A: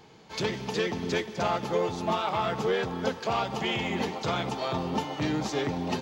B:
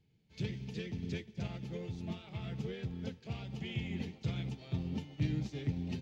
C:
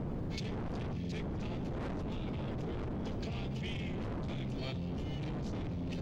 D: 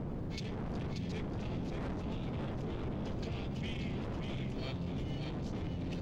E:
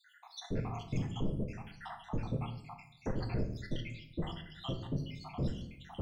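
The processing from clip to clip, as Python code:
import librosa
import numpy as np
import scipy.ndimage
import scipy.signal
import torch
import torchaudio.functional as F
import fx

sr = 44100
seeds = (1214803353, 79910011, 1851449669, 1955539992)

y1 = fx.curve_eq(x, sr, hz=(120.0, 1100.0, 2300.0, 11000.0), db=(0, -30, -13, -20))
y1 = fx.upward_expand(y1, sr, threshold_db=-60.0, expansion=1.5)
y1 = F.gain(torch.from_numpy(y1), 4.0).numpy()
y2 = fx.dmg_wind(y1, sr, seeds[0], corner_hz=240.0, level_db=-33.0)
y2 = 10.0 ** (-37.0 / 20.0) * np.tanh(y2 / 10.0 ** (-37.0 / 20.0))
y2 = fx.env_flatten(y2, sr, amount_pct=100)
y3 = y2 + 10.0 ** (-5.5 / 20.0) * np.pad(y2, (int(582 * sr / 1000.0), 0))[:len(y2)]
y3 = F.gain(torch.from_numpy(y3), -1.5).numpy()
y4 = fx.spec_dropout(y3, sr, seeds[1], share_pct=82)
y4 = fx.room_shoebox(y4, sr, seeds[2], volume_m3=130.0, walls='mixed', distance_m=0.52)
y4 = 10.0 ** (-29.5 / 20.0) * np.tanh(y4 / 10.0 ** (-29.5 / 20.0))
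y4 = F.gain(torch.from_numpy(y4), 6.5).numpy()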